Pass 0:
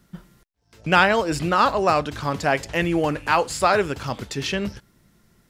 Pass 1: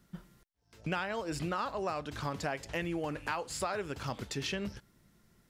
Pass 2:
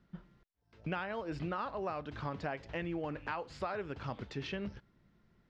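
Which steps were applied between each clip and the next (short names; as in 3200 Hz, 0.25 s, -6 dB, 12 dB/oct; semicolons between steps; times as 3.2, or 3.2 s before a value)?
compressor 6:1, threshold -25 dBFS, peak gain reduction 13.5 dB; gain -7 dB
air absorption 230 m; gain -2 dB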